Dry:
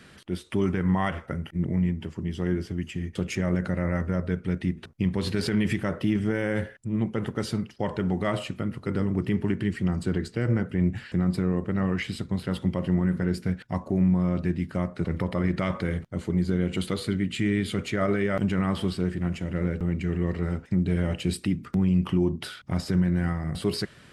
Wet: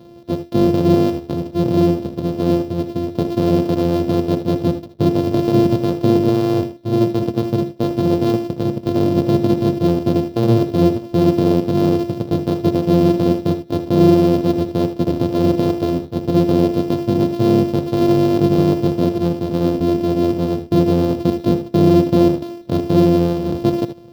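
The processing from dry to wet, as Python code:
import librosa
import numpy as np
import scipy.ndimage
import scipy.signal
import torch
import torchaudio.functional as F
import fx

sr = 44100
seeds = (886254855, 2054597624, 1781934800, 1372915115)

p1 = np.r_[np.sort(x[:len(x) // 128 * 128].reshape(-1, 128), axis=1).ravel(), x[len(x) // 128 * 128:]]
p2 = fx.graphic_eq(p1, sr, hz=(125, 250, 500, 2000, 4000, 8000), db=(9, 10, 12, -9, 9, -12))
p3 = p2 + fx.room_early_taps(p2, sr, ms=(64, 78), db=(-15.0, -12.0), dry=0)
y = F.gain(torch.from_numpy(p3), -1.0).numpy()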